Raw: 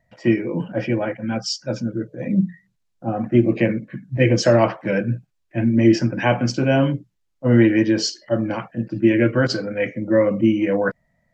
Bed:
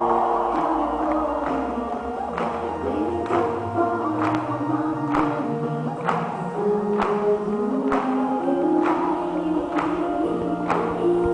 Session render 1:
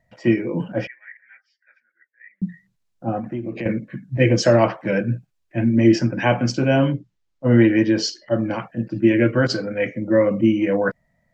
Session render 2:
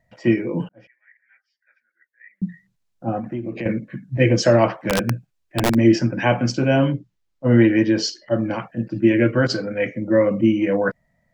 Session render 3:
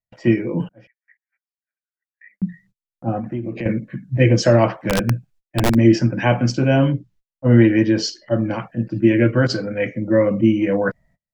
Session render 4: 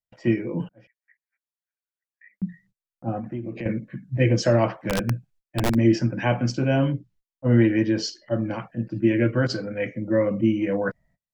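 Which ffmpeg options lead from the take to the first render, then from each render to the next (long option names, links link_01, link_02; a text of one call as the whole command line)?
ffmpeg -i in.wav -filter_complex "[0:a]asettb=1/sr,asplit=3[link_01][link_02][link_03];[link_01]atrim=end=0.874[link_04];[link_02]atrim=start=0.87:end=2.42,asetpts=PTS-STARTPTS,afade=type=in:duration=0.004:curve=qsin,afade=type=out:start_time=1.546:duration=0.004:curve=qsin,asuperpass=centerf=1900:order=4:qfactor=5.2[link_05];[link_03]atrim=start=2.416[link_06];[link_04][link_05]acrossfade=duration=0.004:curve1=hsin:curve2=qsin[link_07];[link_07][link_06]acrossfade=duration=0.004:curve1=qsin:curve2=hsin,asettb=1/sr,asplit=3[link_08][link_09][link_10];[link_08]atrim=end=3.194[link_11];[link_09]atrim=start=3.19:end=3.66,asetpts=PTS-STARTPTS,afade=type=in:duration=0.004:curve=qsin,afade=type=out:start_time=0.466:duration=0.004:curve=qsin,acompressor=threshold=-26dB:ratio=4:attack=3.2:release=140:knee=1:detection=peak[link_12];[link_10]atrim=start=3.656[link_13];[link_11][link_12]acrossfade=duration=0.004:curve1=hsin:curve2=qsin[link_14];[link_14][link_13]acrossfade=duration=0.004:curve1=qsin:curve2=hsin,asettb=1/sr,asplit=3[link_15][link_16][link_17];[link_15]atrim=end=6.864[link_18];[link_16]atrim=start=6.86:end=8.38,asetpts=PTS-STARTPTS,afade=type=in:duration=0.004:curve=qsin,afade=type=out:start_time=1.516:duration=0.004:curve=qsin,lowpass=6500[link_19];[link_17]atrim=start=8.376[link_20];[link_18][link_19]acrossfade=duration=0.004:curve1=hsin:curve2=qsin[link_21];[link_21][link_20]acrossfade=duration=0.004:curve1=qsin:curve2=hsin" out.wav
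ffmpeg -i in.wav -filter_complex "[0:a]asplit=3[link_01][link_02][link_03];[link_01]afade=type=out:start_time=4.85:duration=0.02[link_04];[link_02]aeval=exprs='(mod(4.22*val(0)+1,2)-1)/4.22':channel_layout=same,afade=type=in:start_time=4.85:duration=0.02,afade=type=out:start_time=5.73:duration=0.02[link_05];[link_03]afade=type=in:start_time=5.73:duration=0.02[link_06];[link_04][link_05][link_06]amix=inputs=3:normalize=0,asplit=2[link_07][link_08];[link_07]atrim=end=0.69,asetpts=PTS-STARTPTS,afade=type=out:start_time=0.686:duration=0.004:curve=hsin[link_09];[link_08]atrim=start=0.69,asetpts=PTS-STARTPTS,afade=type=in:duration=1.74[link_10];[link_09][link_10]concat=n=2:v=0:a=1" out.wav
ffmpeg -i in.wav -af "agate=range=-33dB:threshold=-52dB:ratio=16:detection=peak,lowshelf=frequency=110:gain=9" out.wav
ffmpeg -i in.wav -af "volume=-5.5dB" out.wav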